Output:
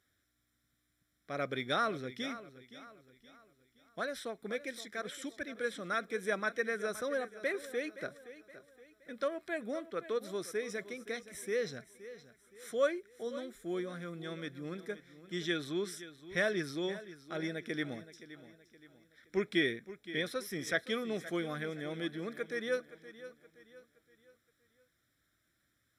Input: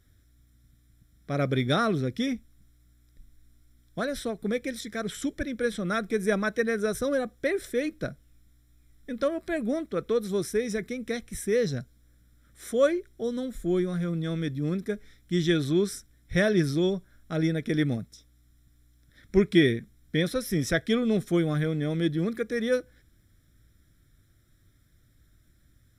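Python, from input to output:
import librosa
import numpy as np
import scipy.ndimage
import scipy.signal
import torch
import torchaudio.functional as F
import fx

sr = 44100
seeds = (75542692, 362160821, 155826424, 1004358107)

y = fx.highpass(x, sr, hz=1200.0, slope=6)
y = fx.high_shelf(y, sr, hz=3000.0, db=-9.5)
y = fx.echo_feedback(y, sr, ms=520, feedback_pct=41, wet_db=-15.0)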